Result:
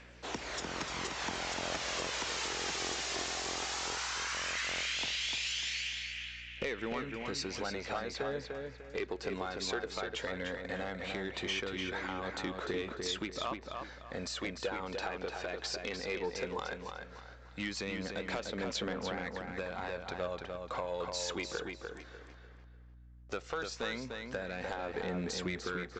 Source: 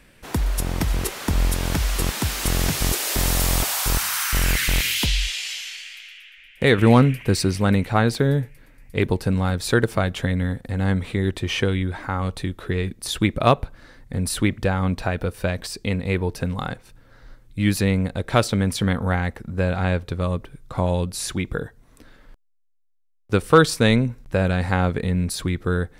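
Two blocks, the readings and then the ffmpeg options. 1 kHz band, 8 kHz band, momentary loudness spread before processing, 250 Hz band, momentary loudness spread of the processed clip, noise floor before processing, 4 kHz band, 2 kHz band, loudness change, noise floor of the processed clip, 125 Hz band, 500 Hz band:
−12.5 dB, −13.0 dB, 9 LU, −19.0 dB, 8 LU, −53 dBFS, −9.0 dB, −10.5 dB, −15.0 dB, −54 dBFS, −26.0 dB, −13.5 dB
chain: -filter_complex "[0:a]highpass=400,acompressor=threshold=-31dB:ratio=8,aphaser=in_gain=1:out_gain=1:delay=2.9:decay=0.33:speed=0.16:type=triangular,aeval=exprs='val(0)+0.00178*(sin(2*PI*60*n/s)+sin(2*PI*2*60*n/s)/2+sin(2*PI*3*60*n/s)/3+sin(2*PI*4*60*n/s)/4+sin(2*PI*5*60*n/s)/5)':channel_layout=same,aresample=16000,asoftclip=type=tanh:threshold=-25.5dB,aresample=44100,asplit=2[link_01][link_02];[link_02]adelay=298,lowpass=frequency=4700:poles=1,volume=-4.5dB,asplit=2[link_03][link_04];[link_04]adelay=298,lowpass=frequency=4700:poles=1,volume=0.32,asplit=2[link_05][link_06];[link_06]adelay=298,lowpass=frequency=4700:poles=1,volume=0.32,asplit=2[link_07][link_08];[link_08]adelay=298,lowpass=frequency=4700:poles=1,volume=0.32[link_09];[link_01][link_03][link_05][link_07][link_09]amix=inputs=5:normalize=0,volume=-1.5dB"

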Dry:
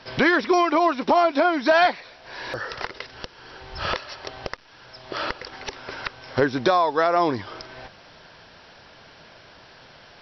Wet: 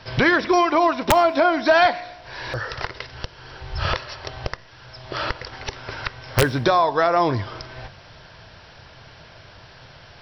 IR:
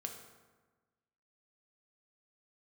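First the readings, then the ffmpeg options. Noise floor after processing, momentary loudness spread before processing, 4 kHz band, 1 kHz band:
−46 dBFS, 20 LU, +2.5 dB, +2.0 dB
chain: -filter_complex "[0:a]aeval=exprs='(mod(2.66*val(0)+1,2)-1)/2.66':channel_layout=same,lowshelf=frequency=160:width_type=q:width=1.5:gain=8,asplit=2[link_01][link_02];[1:a]atrim=start_sample=2205,asetrate=61740,aresample=44100[link_03];[link_02][link_03]afir=irnorm=-1:irlink=0,volume=-6dB[link_04];[link_01][link_04]amix=inputs=2:normalize=0"

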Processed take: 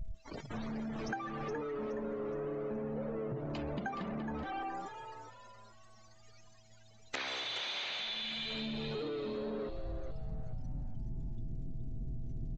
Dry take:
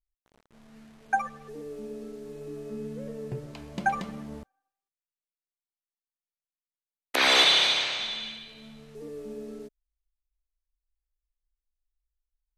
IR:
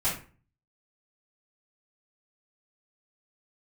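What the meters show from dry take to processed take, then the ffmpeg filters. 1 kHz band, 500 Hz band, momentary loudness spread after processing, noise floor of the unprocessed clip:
−9.5 dB, −1.5 dB, 9 LU, below −85 dBFS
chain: -filter_complex "[0:a]aeval=exprs='val(0)+0.5*0.0282*sgn(val(0))':channel_layout=same,afftdn=noise_reduction=32:noise_floor=-41,adynamicequalizer=threshold=0.00562:dfrequency=5400:dqfactor=2.1:tfrequency=5400:tqfactor=2.1:attack=5:release=100:ratio=0.375:range=3:mode=cutabove:tftype=bell,alimiter=limit=-16.5dB:level=0:latency=1:release=112,acompressor=threshold=-40dB:ratio=8,aeval=exprs='val(0)+0.000282*sin(2*PI*650*n/s)':channel_layout=same,asplit=5[link_01][link_02][link_03][link_04][link_05];[link_02]adelay=420,afreqshift=110,volume=-8.5dB[link_06];[link_03]adelay=840,afreqshift=220,volume=-17.4dB[link_07];[link_04]adelay=1260,afreqshift=330,volume=-26.2dB[link_08];[link_05]adelay=1680,afreqshift=440,volume=-35.1dB[link_09];[link_01][link_06][link_07][link_08][link_09]amix=inputs=5:normalize=0,aresample=16000,aresample=44100,volume=2.5dB"

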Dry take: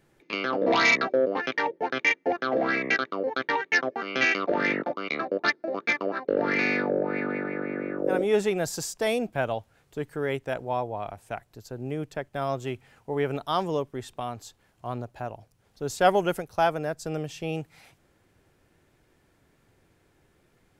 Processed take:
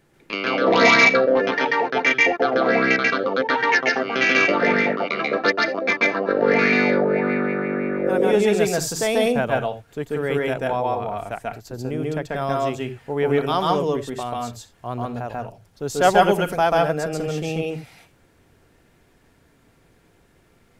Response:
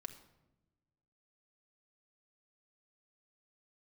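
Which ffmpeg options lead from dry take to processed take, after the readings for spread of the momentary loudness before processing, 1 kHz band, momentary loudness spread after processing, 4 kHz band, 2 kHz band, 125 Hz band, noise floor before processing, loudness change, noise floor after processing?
13 LU, +7.0 dB, 14 LU, +7.0 dB, +7.0 dB, +7.0 dB, −66 dBFS, +7.0 dB, −58 dBFS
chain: -filter_complex "[0:a]asplit=2[link_01][link_02];[1:a]atrim=start_sample=2205,afade=type=out:start_time=0.14:duration=0.01,atrim=end_sample=6615,adelay=138[link_03];[link_02][link_03]afir=irnorm=-1:irlink=0,volume=5dB[link_04];[link_01][link_04]amix=inputs=2:normalize=0,volume=3.5dB"

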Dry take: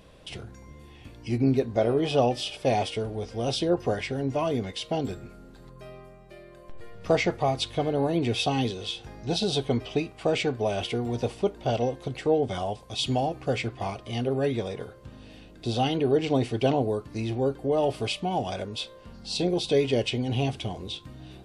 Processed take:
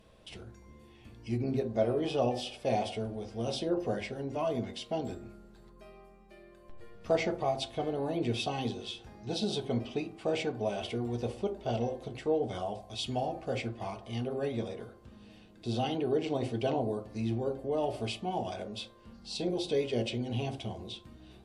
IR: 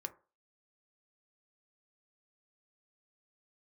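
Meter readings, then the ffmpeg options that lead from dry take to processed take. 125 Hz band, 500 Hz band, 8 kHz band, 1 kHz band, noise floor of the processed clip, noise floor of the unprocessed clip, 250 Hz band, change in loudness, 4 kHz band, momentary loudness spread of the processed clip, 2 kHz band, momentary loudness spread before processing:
−7.0 dB, −6.0 dB, −7.5 dB, −6.5 dB, −56 dBFS, −49 dBFS, −6.0 dB, −6.5 dB, −8.0 dB, 12 LU, −7.5 dB, 14 LU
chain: -filter_complex "[1:a]atrim=start_sample=2205,asetrate=27783,aresample=44100[link_01];[0:a][link_01]afir=irnorm=-1:irlink=0,volume=-7dB"

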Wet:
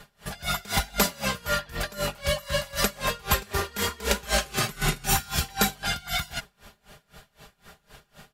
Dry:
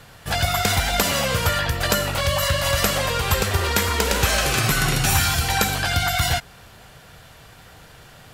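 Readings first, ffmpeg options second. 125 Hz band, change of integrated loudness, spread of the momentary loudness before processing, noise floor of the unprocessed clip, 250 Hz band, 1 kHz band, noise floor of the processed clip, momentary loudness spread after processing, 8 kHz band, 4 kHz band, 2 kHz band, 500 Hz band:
−10.5 dB, −7.0 dB, 3 LU, −47 dBFS, −5.0 dB, −6.5 dB, −70 dBFS, 6 LU, −6.0 dB, −6.5 dB, −7.5 dB, −6.5 dB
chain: -af "aecho=1:1:4.9:0.67,aeval=exprs='val(0)*pow(10,-25*(0.5-0.5*cos(2*PI*3.9*n/s))/20)':channel_layout=same,volume=-2dB"

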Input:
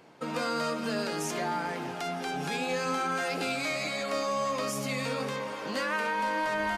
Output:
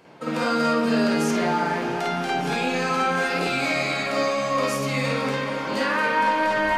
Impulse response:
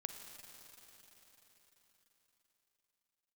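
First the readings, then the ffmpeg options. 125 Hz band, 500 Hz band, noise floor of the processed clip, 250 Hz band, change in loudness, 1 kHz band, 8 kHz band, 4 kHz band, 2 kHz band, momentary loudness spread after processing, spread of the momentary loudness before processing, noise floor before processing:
+9.0 dB, +7.5 dB, −29 dBFS, +10.5 dB, +8.0 dB, +8.0 dB, +3.0 dB, +6.0 dB, +8.0 dB, 5 LU, 5 LU, −38 dBFS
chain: -filter_complex "[0:a]asplit=2[link_01][link_02];[1:a]atrim=start_sample=2205,lowpass=3900,adelay=51[link_03];[link_02][link_03]afir=irnorm=-1:irlink=0,volume=7.5dB[link_04];[link_01][link_04]amix=inputs=2:normalize=0,volume=2dB"

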